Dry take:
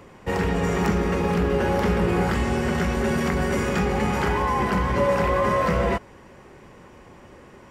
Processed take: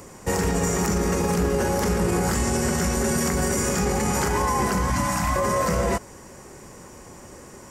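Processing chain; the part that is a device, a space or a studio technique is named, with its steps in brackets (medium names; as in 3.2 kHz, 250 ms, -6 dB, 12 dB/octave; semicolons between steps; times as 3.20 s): 4.90–5.36 s: elliptic band-stop 310–630 Hz; over-bright horn tweeter (resonant high shelf 4.7 kHz +13 dB, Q 1.5; peak limiter -17 dBFS, peak gain reduction 8 dB); trim +3 dB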